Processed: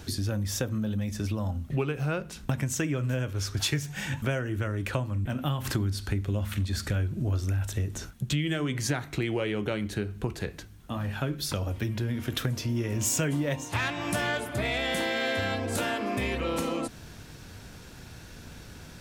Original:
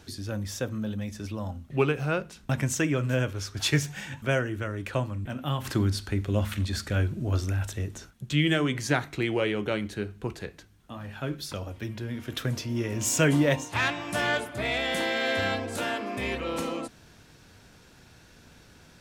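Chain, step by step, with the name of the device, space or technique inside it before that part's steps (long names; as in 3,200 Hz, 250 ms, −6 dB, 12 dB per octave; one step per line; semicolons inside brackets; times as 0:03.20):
ASMR close-microphone chain (low-shelf EQ 170 Hz +6 dB; downward compressor 5 to 1, threshold −32 dBFS, peak gain reduction 14.5 dB; high-shelf EQ 11,000 Hz +6.5 dB)
level +5.5 dB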